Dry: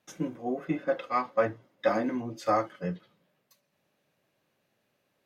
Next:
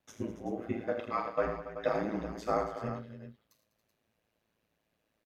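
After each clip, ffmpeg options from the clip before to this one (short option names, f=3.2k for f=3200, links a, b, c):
-af "lowshelf=f=82:g=11,aecho=1:1:42|79|108|199|278|380:0.316|0.316|0.251|0.178|0.224|0.266,aeval=exprs='val(0)*sin(2*PI*55*n/s)':c=same,volume=-3.5dB"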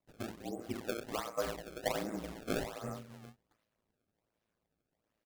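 -af "acrusher=samples=26:mix=1:aa=0.000001:lfo=1:lforange=41.6:lforate=1.3,volume=-5dB"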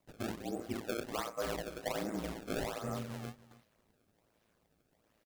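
-af "areverse,acompressor=threshold=-46dB:ratio=4,areverse,aecho=1:1:283:0.119,volume=10dB"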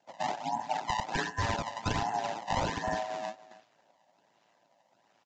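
-filter_complex "[0:a]afftfilt=real='real(if(lt(b,1008),b+24*(1-2*mod(floor(b/24),2)),b),0)':imag='imag(if(lt(b,1008),b+24*(1-2*mod(floor(b/24),2)),b),0)':win_size=2048:overlap=0.75,acrossover=split=150|1200[a][b][c];[a]acrusher=bits=6:mix=0:aa=0.000001[d];[d][b][c]amix=inputs=3:normalize=0,aresample=16000,aresample=44100,volume=6.5dB"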